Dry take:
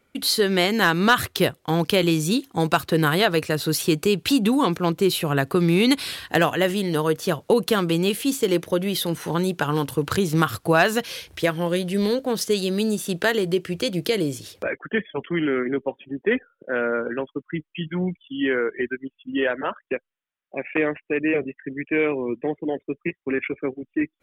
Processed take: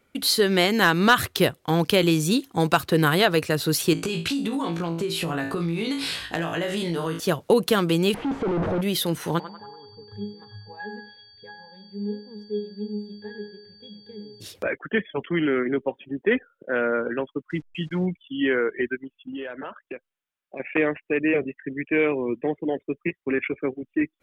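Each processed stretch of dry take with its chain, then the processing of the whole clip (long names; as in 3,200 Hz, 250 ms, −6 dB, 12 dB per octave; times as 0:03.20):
0:03.93–0:07.20: low-pass filter 9,300 Hz + flutter between parallel walls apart 3.1 metres, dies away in 0.26 s + downward compressor 16 to 1, threshold −22 dBFS
0:08.14–0:08.81: sign of each sample alone + low-pass filter 1,100 Hz
0:09.38–0:14.40: resonances in every octave G#, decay 0.48 s + steady tone 4,600 Hz −50 dBFS + feedback echo with a band-pass in the loop 95 ms, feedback 53%, band-pass 1,100 Hz, level −11 dB
0:17.50–0:18.06: hold until the input has moved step −50.5 dBFS + low-pass filter 6,100 Hz
0:18.96–0:20.60: notch filter 1,900 Hz, Q 17 + downward compressor 4 to 1, threshold −32 dBFS
whole clip: no processing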